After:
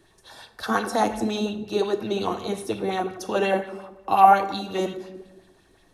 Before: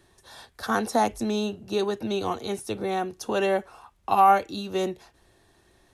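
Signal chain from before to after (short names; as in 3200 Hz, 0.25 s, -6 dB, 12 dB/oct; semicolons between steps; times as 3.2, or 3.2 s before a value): shoebox room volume 500 m³, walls mixed, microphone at 0.58 m; LFO bell 5.6 Hz 240–3800 Hz +8 dB; gain -1 dB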